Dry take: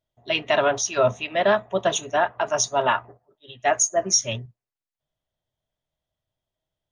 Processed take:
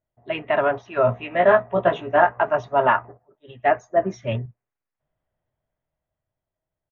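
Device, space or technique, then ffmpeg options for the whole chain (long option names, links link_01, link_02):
action camera in a waterproof case: -filter_complex "[0:a]asplit=3[link_01][link_02][link_03];[link_01]afade=type=out:start_time=1.07:duration=0.02[link_04];[link_02]asplit=2[link_05][link_06];[link_06]adelay=17,volume=-2.5dB[link_07];[link_05][link_07]amix=inputs=2:normalize=0,afade=type=in:start_time=1.07:duration=0.02,afade=type=out:start_time=2.42:duration=0.02[link_08];[link_03]afade=type=in:start_time=2.42:duration=0.02[link_09];[link_04][link_08][link_09]amix=inputs=3:normalize=0,asettb=1/sr,asplit=3[link_10][link_11][link_12];[link_10]atrim=end=3.644[link_13];[link_11]atrim=start=3.64:end=4.35,asetpts=PTS-STARTPTS,afade=type=in:duration=0.004:curve=qsin,afade=type=out:start_time=0.706:duration=0.004:curve=qsin,equalizer=frequency=1300:width=0.67:gain=-3.5[link_14];[link_12]atrim=start=4.346[link_15];[link_13][link_14]acrossfade=duration=0.004:curve1=hsin:curve2=qsin[link_16];[link_16][link_15]acrossfade=duration=0.004:curve1=qsin:curve2=hsin,lowpass=frequency=2200:width=0.5412,lowpass=frequency=2200:width=1.3066,dynaudnorm=framelen=250:gausssize=13:maxgain=8.5dB" -ar 44100 -c:a aac -b:a 96k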